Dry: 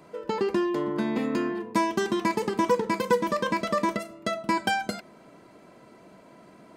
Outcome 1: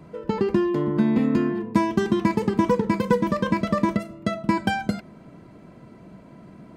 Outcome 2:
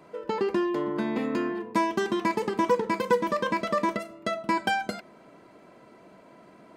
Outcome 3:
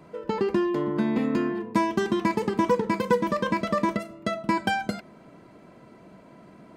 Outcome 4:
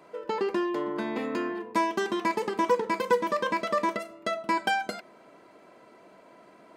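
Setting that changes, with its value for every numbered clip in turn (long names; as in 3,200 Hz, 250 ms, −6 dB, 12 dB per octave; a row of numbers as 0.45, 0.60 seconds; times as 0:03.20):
bass and treble, bass: +15, −3, +6, −12 decibels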